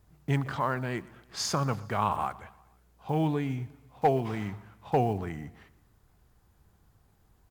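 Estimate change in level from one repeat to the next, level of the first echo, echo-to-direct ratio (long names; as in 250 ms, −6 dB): −5.0 dB, −22.0 dB, −20.5 dB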